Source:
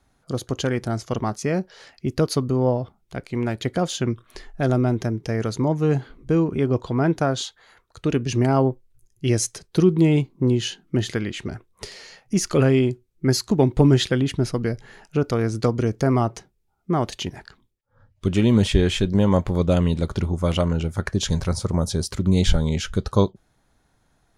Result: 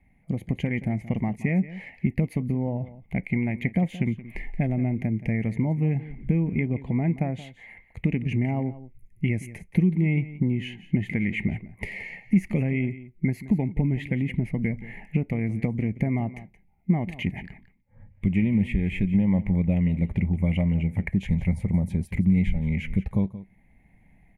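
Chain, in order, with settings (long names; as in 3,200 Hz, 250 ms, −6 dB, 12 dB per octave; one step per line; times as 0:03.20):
automatic gain control gain up to 5 dB
low-shelf EQ 86 Hz +5 dB
downward compressor 3 to 1, threshold −25 dBFS, peak gain reduction 15.5 dB
drawn EQ curve 130 Hz 0 dB, 190 Hz +8 dB, 390 Hz −8 dB, 830 Hz −3 dB, 1,400 Hz −25 dB, 2,100 Hz +13 dB, 3,500 Hz −19 dB, 5,300 Hz −29 dB, 12,000 Hz −9 dB
on a send: single-tap delay 175 ms −16 dB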